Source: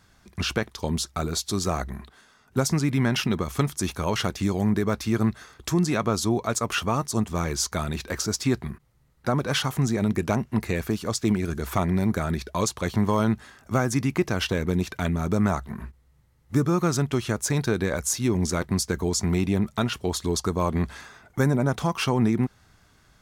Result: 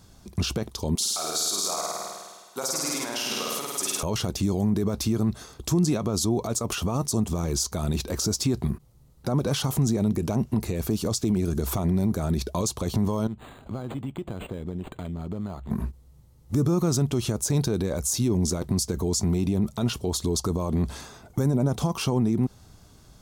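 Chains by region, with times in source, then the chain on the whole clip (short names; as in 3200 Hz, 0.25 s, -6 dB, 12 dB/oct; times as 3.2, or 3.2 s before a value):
0.95–4.03 HPF 830 Hz + flutter echo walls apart 8.8 m, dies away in 1.4 s
13.27–15.71 high shelf 2200 Hz +8.5 dB + compressor 4:1, threshold -39 dBFS + decimation joined by straight lines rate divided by 8×
whole clip: de-esser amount 40%; limiter -22.5 dBFS; bell 1800 Hz -14 dB 1.4 oct; gain +8 dB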